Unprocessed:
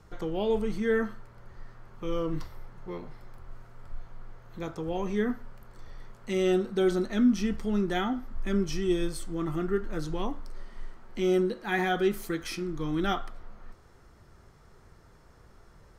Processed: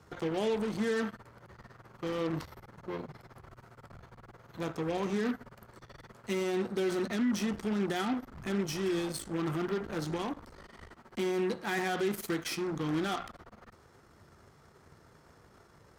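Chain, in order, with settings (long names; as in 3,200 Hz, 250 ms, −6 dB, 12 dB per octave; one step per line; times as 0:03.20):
brickwall limiter −23.5 dBFS, peak gain reduction 9 dB
harmonic generator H 8 −18 dB, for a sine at −23.5 dBFS
high-pass filter 90 Hz 12 dB per octave
mains-hum notches 60/120/180 Hz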